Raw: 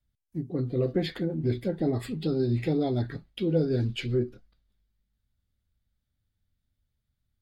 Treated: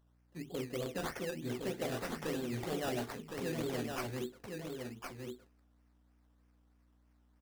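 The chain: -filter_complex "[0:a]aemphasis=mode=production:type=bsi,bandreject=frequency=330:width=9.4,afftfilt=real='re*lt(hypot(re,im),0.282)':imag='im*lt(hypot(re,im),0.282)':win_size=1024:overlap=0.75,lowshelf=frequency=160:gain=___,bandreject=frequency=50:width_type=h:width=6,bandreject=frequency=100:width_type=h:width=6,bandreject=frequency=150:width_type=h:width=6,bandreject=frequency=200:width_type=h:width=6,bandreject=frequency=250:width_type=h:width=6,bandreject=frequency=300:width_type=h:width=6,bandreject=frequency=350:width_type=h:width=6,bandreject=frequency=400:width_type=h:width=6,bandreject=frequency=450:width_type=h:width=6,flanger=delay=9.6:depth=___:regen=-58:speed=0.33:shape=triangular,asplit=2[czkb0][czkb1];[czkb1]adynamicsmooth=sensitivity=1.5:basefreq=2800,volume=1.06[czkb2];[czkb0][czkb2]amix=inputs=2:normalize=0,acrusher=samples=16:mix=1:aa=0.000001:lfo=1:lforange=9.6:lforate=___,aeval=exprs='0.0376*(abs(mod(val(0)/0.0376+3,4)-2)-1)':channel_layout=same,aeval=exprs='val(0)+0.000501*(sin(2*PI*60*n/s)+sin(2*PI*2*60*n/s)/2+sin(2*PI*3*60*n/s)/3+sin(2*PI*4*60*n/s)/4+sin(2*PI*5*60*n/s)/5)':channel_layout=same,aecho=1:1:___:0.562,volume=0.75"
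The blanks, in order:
-11.5, 7.1, 3.2, 1063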